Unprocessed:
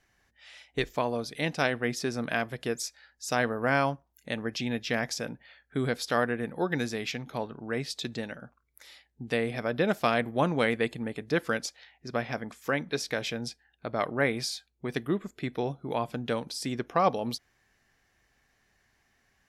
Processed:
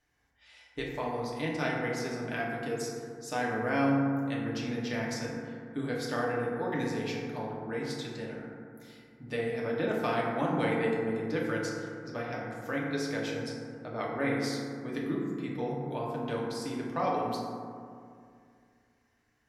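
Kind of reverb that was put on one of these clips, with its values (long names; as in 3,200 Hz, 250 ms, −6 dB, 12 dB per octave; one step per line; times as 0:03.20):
feedback delay network reverb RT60 2.3 s, low-frequency decay 1.2×, high-frequency decay 0.3×, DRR −4.5 dB
level −9.5 dB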